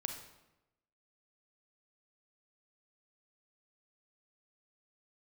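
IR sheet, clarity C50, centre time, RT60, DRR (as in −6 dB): 6.5 dB, 25 ms, 0.95 s, 4.5 dB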